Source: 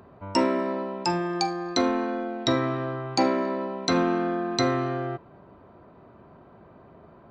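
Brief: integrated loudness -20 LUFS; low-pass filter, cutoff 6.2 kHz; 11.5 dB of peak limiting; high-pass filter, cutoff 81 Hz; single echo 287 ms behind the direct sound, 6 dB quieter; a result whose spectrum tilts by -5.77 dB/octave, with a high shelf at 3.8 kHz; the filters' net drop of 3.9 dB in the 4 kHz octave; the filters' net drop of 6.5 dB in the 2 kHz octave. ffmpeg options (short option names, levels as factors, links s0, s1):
-af "highpass=81,lowpass=6200,equalizer=f=2000:t=o:g=-9,highshelf=f=3800:g=7.5,equalizer=f=4000:t=o:g=-6.5,alimiter=limit=0.0794:level=0:latency=1,aecho=1:1:287:0.501,volume=3.35"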